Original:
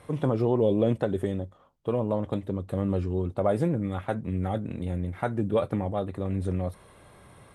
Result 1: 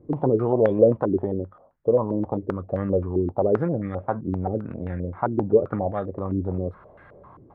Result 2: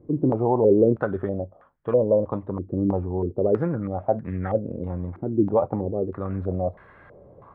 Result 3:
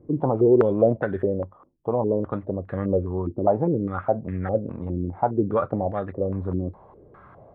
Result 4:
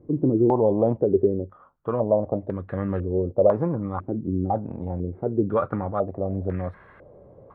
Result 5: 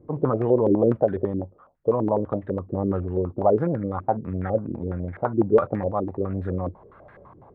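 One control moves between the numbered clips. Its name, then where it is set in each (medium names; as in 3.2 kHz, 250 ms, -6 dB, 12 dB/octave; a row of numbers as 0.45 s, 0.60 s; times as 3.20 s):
step-sequenced low-pass, rate: 7.6 Hz, 3.1 Hz, 4.9 Hz, 2 Hz, 12 Hz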